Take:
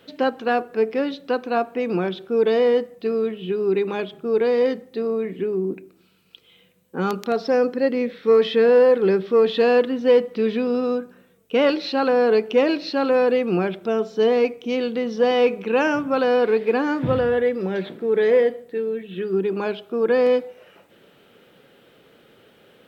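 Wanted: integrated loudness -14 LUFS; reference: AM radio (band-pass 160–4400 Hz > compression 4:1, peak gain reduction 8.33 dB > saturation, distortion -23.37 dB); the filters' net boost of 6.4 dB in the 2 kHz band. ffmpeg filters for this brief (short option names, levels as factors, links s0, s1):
-af "highpass=160,lowpass=4400,equalizer=f=2000:t=o:g=8.5,acompressor=threshold=0.1:ratio=4,asoftclip=threshold=0.211,volume=3.76"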